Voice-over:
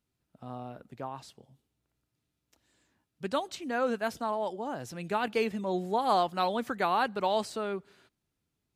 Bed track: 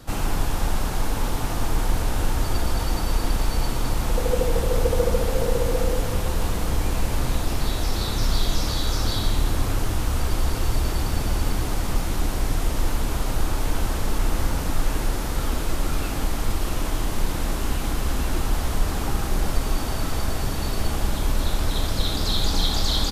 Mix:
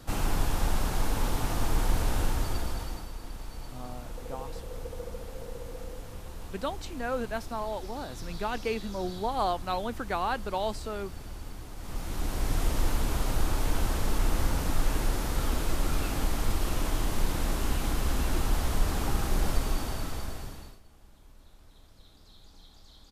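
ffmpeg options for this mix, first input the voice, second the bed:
-filter_complex "[0:a]adelay=3300,volume=-2.5dB[a];[1:a]volume=10dB,afade=t=out:st=2.14:d=0.97:silence=0.199526,afade=t=in:st=11.76:d=0.85:silence=0.199526,afade=t=out:st=19.5:d=1.3:silence=0.0375837[b];[a][b]amix=inputs=2:normalize=0"

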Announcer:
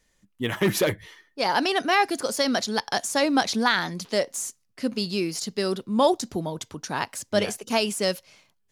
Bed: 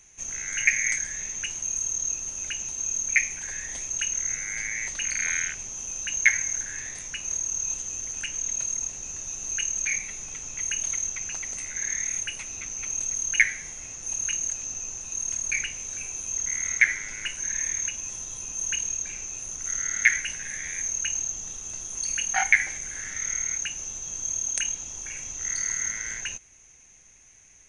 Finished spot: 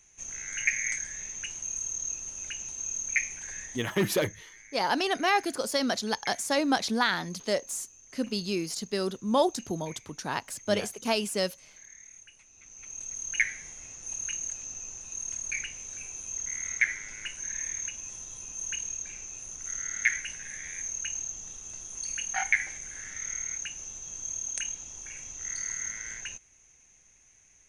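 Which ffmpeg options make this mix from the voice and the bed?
-filter_complex "[0:a]adelay=3350,volume=-4dB[a];[1:a]volume=10dB,afade=t=out:st=3.62:d=0.27:silence=0.158489,afade=t=in:st=12.53:d=0.93:silence=0.16788[b];[a][b]amix=inputs=2:normalize=0"

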